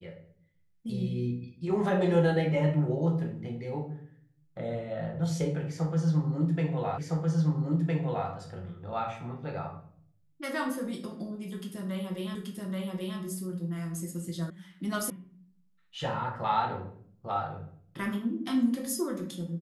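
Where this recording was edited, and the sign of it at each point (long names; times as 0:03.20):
0:06.98: the same again, the last 1.31 s
0:12.35: the same again, the last 0.83 s
0:14.50: cut off before it has died away
0:15.10: cut off before it has died away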